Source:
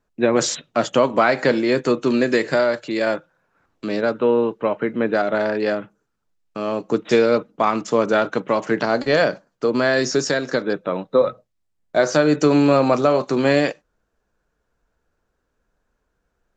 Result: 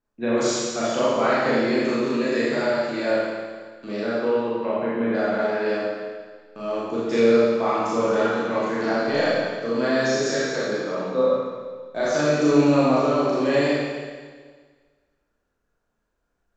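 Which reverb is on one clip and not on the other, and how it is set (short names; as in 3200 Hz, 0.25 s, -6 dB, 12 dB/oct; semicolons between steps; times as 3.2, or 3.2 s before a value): Schroeder reverb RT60 1.6 s, combs from 27 ms, DRR -8.5 dB; gain -12 dB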